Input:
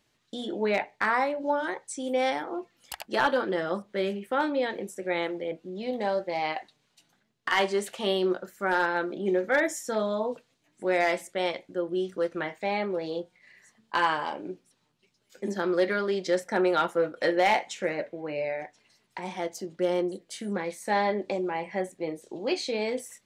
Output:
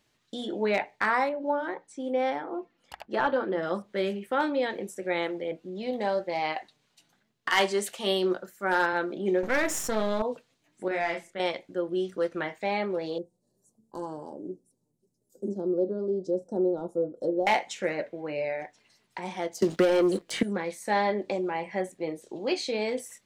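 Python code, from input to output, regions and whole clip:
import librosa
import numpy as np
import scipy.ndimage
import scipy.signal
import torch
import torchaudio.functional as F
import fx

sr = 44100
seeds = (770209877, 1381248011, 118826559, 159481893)

y = fx.chain(x, sr, fx.lowpass(hz=1400.0, slope=6),
    fx.hum_notches(base_hz=60, count=5), at=(1.29, 3.63))
y = fx.chain(y, sr, fx.high_shelf(hz=4600.0, db=6.5),
    fx.band_widen(depth_pct=40), at=(7.5, 8.93))
y = fx.chain(y, sr, fx.halfwave_gain(db=-12.0),
    fx.env_flatten(amount_pct=50), at=(9.43, 10.22))
y = fx.chain(y, sr, fx.lowpass(hz=1700.0, slope=6),
    fx.peak_eq(hz=460.0, db=-7.5, octaves=2.2),
    fx.doubler(ms=30.0, db=-3), at=(10.88, 11.4))
y = fx.chain(y, sr, fx.cheby1_bandstop(low_hz=430.0, high_hz=9400.0, order=2),
    fx.env_lowpass_down(base_hz=2700.0, full_db=-24.5), at=(13.18, 17.47))
y = fx.chain(y, sr, fx.leveller(passes=2),
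    fx.band_squash(depth_pct=100), at=(19.62, 20.43))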